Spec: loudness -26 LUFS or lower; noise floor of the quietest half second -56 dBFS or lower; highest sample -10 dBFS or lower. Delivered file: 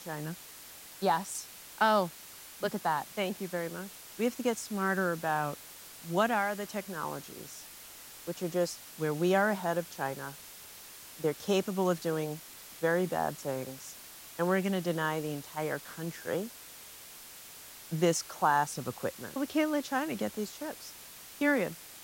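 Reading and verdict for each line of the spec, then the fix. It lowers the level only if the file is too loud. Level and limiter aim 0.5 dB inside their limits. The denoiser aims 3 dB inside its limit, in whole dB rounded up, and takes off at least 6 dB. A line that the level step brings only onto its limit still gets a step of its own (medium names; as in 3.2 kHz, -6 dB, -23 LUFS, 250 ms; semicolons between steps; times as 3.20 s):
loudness -32.5 LUFS: pass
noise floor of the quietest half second -49 dBFS: fail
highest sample -13.0 dBFS: pass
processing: noise reduction 10 dB, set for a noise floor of -49 dBFS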